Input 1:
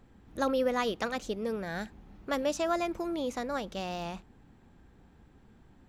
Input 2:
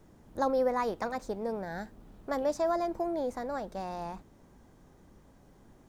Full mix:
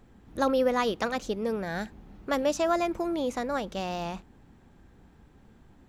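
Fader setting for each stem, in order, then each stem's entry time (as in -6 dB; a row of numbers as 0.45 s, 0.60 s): +2.0 dB, -9.5 dB; 0.00 s, 0.00 s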